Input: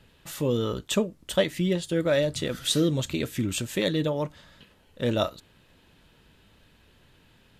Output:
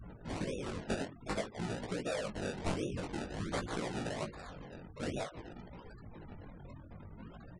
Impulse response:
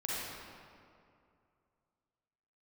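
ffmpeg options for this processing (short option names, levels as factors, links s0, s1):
-filter_complex "[0:a]aeval=exprs='val(0)+0.5*0.02*sgn(val(0))':c=same,asplit=3[s0][s1][s2];[s0]afade=t=out:st=0.81:d=0.02[s3];[s1]adynamicequalizer=threshold=0.0141:dfrequency=1300:dqfactor=0.75:tfrequency=1300:tqfactor=0.75:attack=5:release=100:ratio=0.375:range=3:mode=boostabove:tftype=bell,afade=t=in:st=0.81:d=0.02,afade=t=out:st=3.08:d=0.02[s4];[s2]afade=t=in:st=3.08:d=0.02[s5];[s3][s4][s5]amix=inputs=3:normalize=0,asplit=5[s6][s7][s8][s9][s10];[s7]adelay=287,afreqshift=130,volume=0.0841[s11];[s8]adelay=574,afreqshift=260,volume=0.0452[s12];[s9]adelay=861,afreqshift=390,volume=0.0245[s13];[s10]adelay=1148,afreqshift=520,volume=0.0132[s14];[s6][s11][s12][s13][s14]amix=inputs=5:normalize=0,acompressor=threshold=0.0398:ratio=6,highshelf=f=3200:g=7,afftfilt=real='hypot(re,im)*cos(2*PI*random(0))':imag='hypot(re,im)*sin(2*PI*random(1))':win_size=512:overlap=0.75,afftfilt=real='re*gte(hypot(re,im),0.0141)':imag='im*gte(hypot(re,im),0.0141)':win_size=1024:overlap=0.75,acrusher=samples=28:mix=1:aa=0.000001:lfo=1:lforange=28:lforate=1.3,flanger=delay=16.5:depth=5.9:speed=0.52,afftfilt=real='re*gte(hypot(re,im),0.00126)':imag='im*gte(hypot(re,im),0.00126)':win_size=1024:overlap=0.75,aresample=22050,aresample=44100,volume=1.19"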